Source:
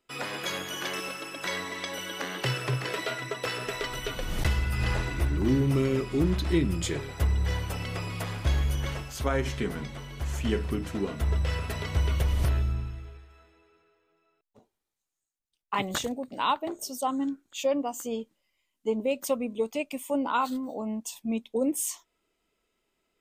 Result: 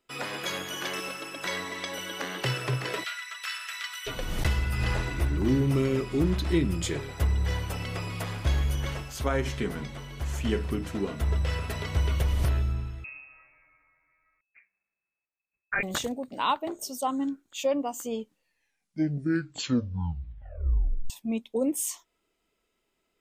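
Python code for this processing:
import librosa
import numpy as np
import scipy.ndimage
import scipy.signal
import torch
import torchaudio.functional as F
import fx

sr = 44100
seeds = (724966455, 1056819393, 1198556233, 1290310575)

y = fx.highpass(x, sr, hz=1300.0, slope=24, at=(3.03, 4.06), fade=0.02)
y = fx.freq_invert(y, sr, carrier_hz=2600, at=(13.04, 15.83))
y = fx.edit(y, sr, fx.tape_stop(start_s=18.16, length_s=2.94), tone=tone)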